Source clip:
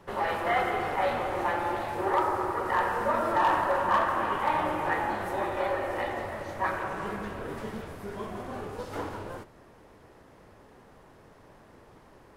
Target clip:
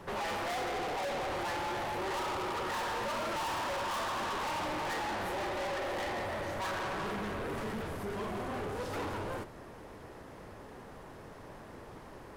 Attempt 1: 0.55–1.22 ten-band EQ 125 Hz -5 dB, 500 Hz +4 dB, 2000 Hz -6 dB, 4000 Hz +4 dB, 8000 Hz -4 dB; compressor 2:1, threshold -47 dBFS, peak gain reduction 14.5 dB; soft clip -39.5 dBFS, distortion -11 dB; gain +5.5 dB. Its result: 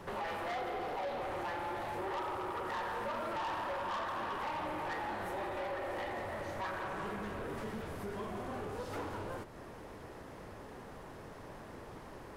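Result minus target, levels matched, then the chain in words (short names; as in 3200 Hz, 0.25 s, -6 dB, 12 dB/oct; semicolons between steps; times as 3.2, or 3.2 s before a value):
compressor: peak gain reduction +14.5 dB
0.55–1.22 ten-band EQ 125 Hz -5 dB, 500 Hz +4 dB, 2000 Hz -6 dB, 4000 Hz +4 dB, 8000 Hz -4 dB; soft clip -39.5 dBFS, distortion -3 dB; gain +5.5 dB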